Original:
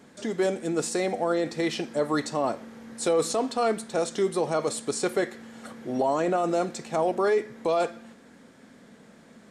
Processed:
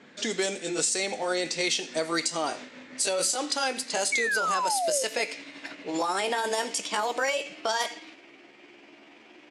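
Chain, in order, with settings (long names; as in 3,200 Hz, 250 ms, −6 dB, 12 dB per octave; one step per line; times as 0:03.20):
pitch glide at a constant tempo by +6.5 semitones starting unshifted
meter weighting curve D
on a send: single-tap delay 84 ms −22.5 dB
on the sum: sound drawn into the spectrogram fall, 0:04.12–0:05.04, 500–2,300 Hz −22 dBFS
parametric band 7,500 Hz +10.5 dB 1.1 octaves
downward compressor 10 to 1, threshold −23 dBFS, peak gain reduction 9 dB
low-pass that shuts in the quiet parts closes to 1,900 Hz, open at −23 dBFS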